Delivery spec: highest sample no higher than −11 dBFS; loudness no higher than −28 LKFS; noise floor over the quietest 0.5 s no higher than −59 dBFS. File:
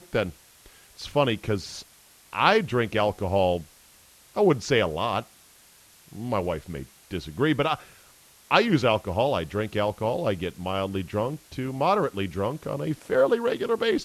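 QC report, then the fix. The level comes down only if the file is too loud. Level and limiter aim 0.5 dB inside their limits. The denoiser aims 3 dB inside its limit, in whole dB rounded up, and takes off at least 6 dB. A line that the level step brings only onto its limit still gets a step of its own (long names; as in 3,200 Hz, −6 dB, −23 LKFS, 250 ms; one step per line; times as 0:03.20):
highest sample −4.5 dBFS: out of spec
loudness −25.5 LKFS: out of spec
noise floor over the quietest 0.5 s −55 dBFS: out of spec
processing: broadband denoise 6 dB, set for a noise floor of −55 dBFS
level −3 dB
brickwall limiter −11.5 dBFS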